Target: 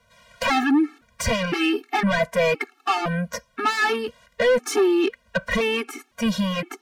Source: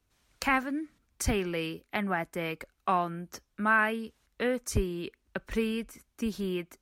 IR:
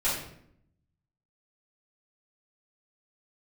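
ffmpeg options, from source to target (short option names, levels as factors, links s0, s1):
-filter_complex "[0:a]asplit=2[s0][s1];[s1]highpass=f=720:p=1,volume=17.8,asoftclip=type=tanh:threshold=0.251[s2];[s0][s2]amix=inputs=2:normalize=0,lowpass=f=1600:p=1,volume=0.501,aeval=exprs='0.237*sin(PI/2*2*val(0)/0.237)':c=same,afftfilt=real='re*gt(sin(2*PI*0.98*pts/sr)*(1-2*mod(floor(b*sr/1024/230),2)),0)':imag='im*gt(sin(2*PI*0.98*pts/sr)*(1-2*mod(floor(b*sr/1024/230),2)),0)':win_size=1024:overlap=0.75,volume=0.841"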